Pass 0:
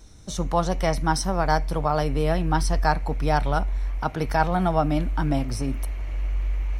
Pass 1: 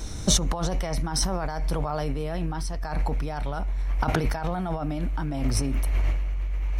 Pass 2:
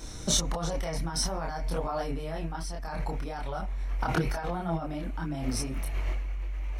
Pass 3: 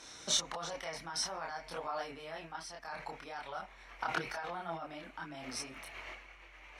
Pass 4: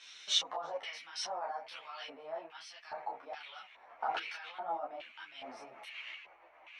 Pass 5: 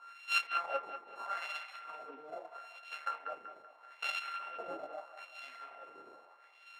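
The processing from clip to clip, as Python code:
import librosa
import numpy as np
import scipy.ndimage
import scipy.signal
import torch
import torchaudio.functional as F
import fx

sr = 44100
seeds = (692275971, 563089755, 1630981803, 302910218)

y1 = fx.over_compress(x, sr, threshold_db=-32.0, ratio=-1.0)
y1 = y1 * librosa.db_to_amplitude(6.0)
y2 = fx.low_shelf(y1, sr, hz=110.0, db=-7.5)
y2 = fx.chorus_voices(y2, sr, voices=6, hz=0.44, base_ms=27, depth_ms=4.1, mix_pct=50)
y3 = fx.bandpass_q(y2, sr, hz=2300.0, q=0.56)
y3 = y3 * librosa.db_to_amplitude(-1.0)
y4 = fx.filter_lfo_bandpass(y3, sr, shape='square', hz=1.2, low_hz=720.0, high_hz=2900.0, q=2.6)
y4 = fx.ensemble(y4, sr)
y4 = y4 * librosa.db_to_amplitude(10.0)
y5 = np.r_[np.sort(y4[:len(y4) // 32 * 32].reshape(-1, 32), axis=1).ravel(), y4[len(y4) // 32 * 32:]]
y5 = fx.wah_lfo(y5, sr, hz=0.79, low_hz=350.0, high_hz=2900.0, q=2.4)
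y5 = fx.echo_wet_bandpass(y5, sr, ms=191, feedback_pct=42, hz=1500.0, wet_db=-6.5)
y5 = y5 * librosa.db_to_amplitude(6.0)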